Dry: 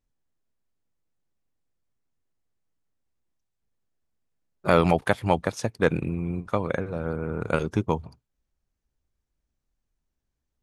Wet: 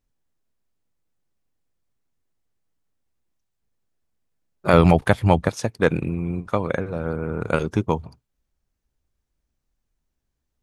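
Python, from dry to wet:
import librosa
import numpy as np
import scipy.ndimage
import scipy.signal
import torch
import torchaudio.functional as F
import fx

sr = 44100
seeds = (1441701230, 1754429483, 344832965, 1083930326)

y = fx.low_shelf(x, sr, hz=150.0, db=11.0, at=(4.73, 5.49))
y = F.gain(torch.from_numpy(y), 3.0).numpy()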